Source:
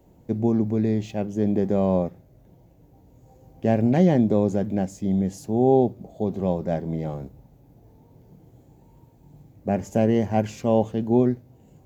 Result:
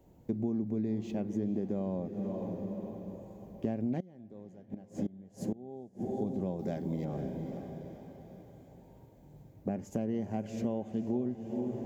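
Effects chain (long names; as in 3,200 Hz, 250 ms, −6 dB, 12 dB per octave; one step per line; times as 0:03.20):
0:06.59–0:07.05: high-shelf EQ 2,100 Hz +11.5 dB
feedback delay with all-pass diffusion 483 ms, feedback 53%, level −12.5 dB
0:04.00–0:06.08: gate with flip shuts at −17 dBFS, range −25 dB
downward compressor 6 to 1, threshold −30 dBFS, peak gain reduction 15.5 dB
dynamic equaliser 250 Hz, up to +7 dB, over −45 dBFS, Q 0.88
level −5.5 dB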